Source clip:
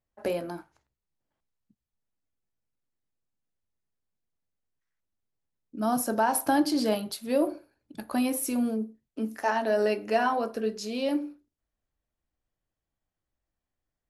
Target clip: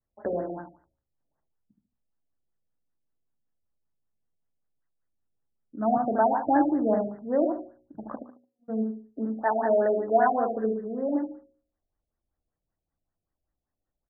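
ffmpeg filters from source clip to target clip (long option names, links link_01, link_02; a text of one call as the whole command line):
ffmpeg -i in.wav -filter_complex "[0:a]adynamicequalizer=threshold=0.0126:dfrequency=720:dqfactor=3:tfrequency=720:tqfactor=3:attack=5:release=100:ratio=0.375:range=2.5:mode=boostabove:tftype=bell,asplit=3[link_01][link_02][link_03];[link_01]afade=type=out:start_time=8.14:duration=0.02[link_04];[link_02]agate=range=-56dB:threshold=-20dB:ratio=16:detection=peak,afade=type=in:start_time=8.14:duration=0.02,afade=type=out:start_time=8.68:duration=0.02[link_05];[link_03]afade=type=in:start_time=8.68:duration=0.02[link_06];[link_04][link_05][link_06]amix=inputs=3:normalize=0,bandreject=frequency=61.05:width_type=h:width=4,bandreject=frequency=122.1:width_type=h:width=4,bandreject=frequency=183.15:width_type=h:width=4,bandreject=frequency=244.2:width_type=h:width=4,bandreject=frequency=305.25:width_type=h:width=4,bandreject=frequency=366.3:width_type=h:width=4,bandreject=frequency=427.35:width_type=h:width=4,bandreject=frequency=488.4:width_type=h:width=4,bandreject=frequency=549.45:width_type=h:width=4,asplit=2[link_07][link_08];[link_08]aecho=0:1:73|146|219|292:0.631|0.177|0.0495|0.0139[link_09];[link_07][link_09]amix=inputs=2:normalize=0,afftfilt=real='re*lt(b*sr/1024,720*pow(2100/720,0.5+0.5*sin(2*PI*5.2*pts/sr)))':imag='im*lt(b*sr/1024,720*pow(2100/720,0.5+0.5*sin(2*PI*5.2*pts/sr)))':win_size=1024:overlap=0.75" out.wav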